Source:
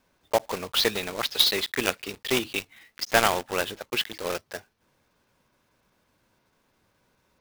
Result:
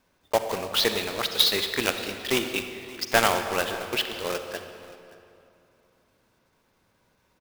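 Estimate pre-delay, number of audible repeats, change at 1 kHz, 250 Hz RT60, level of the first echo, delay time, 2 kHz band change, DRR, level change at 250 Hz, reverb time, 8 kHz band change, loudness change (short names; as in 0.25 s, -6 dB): 39 ms, 1, +0.5 dB, 2.8 s, -20.5 dB, 0.575 s, +0.5 dB, 7.0 dB, +1.0 dB, 2.7 s, +0.5 dB, +0.5 dB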